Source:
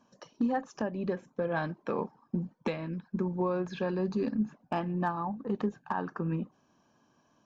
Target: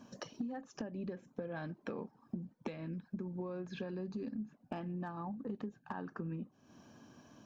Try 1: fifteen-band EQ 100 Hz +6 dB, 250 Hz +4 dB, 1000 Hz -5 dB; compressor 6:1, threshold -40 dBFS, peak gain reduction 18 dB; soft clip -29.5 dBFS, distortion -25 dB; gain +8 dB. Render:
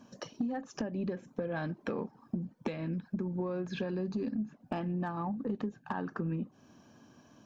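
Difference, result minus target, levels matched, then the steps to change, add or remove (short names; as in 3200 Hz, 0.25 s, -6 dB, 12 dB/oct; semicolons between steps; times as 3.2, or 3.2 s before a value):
compressor: peak gain reduction -7 dB
change: compressor 6:1, threshold -48.5 dBFS, peak gain reduction 25 dB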